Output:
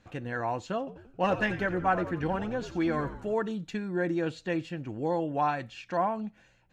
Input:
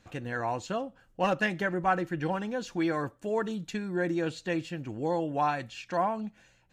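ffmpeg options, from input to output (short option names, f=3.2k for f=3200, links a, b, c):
-filter_complex "[0:a]aemphasis=mode=reproduction:type=cd,asettb=1/sr,asplit=3[a][b][c];[a]atrim=end=0.784[d];[b]atrim=start=0.78:end=3.34,asetpts=PTS-STARTPTS,afade=t=in:d=0.004:c=qsin,afade=t=out:st=2.556:d=0.004:c=qsin,asplit=7[e][f][g][h][i][j][k];[f]adelay=89,afreqshift=-92,volume=-11.5dB[l];[g]adelay=178,afreqshift=-184,volume=-16.9dB[m];[h]adelay=267,afreqshift=-276,volume=-22.2dB[n];[i]adelay=356,afreqshift=-368,volume=-27.6dB[o];[j]adelay=445,afreqshift=-460,volume=-32.9dB[p];[k]adelay=534,afreqshift=-552,volume=-38.3dB[q];[e][l][m][n][o][p][q]amix=inputs=7:normalize=0,atrim=end_sample=112896[r];[c]atrim=start=3.336[s];[d][r]acrossfade=d=0.004:c1=hsin:c2=qsin[t];[t][s]acrossfade=d=0.004:c1=qsin:c2=hsin"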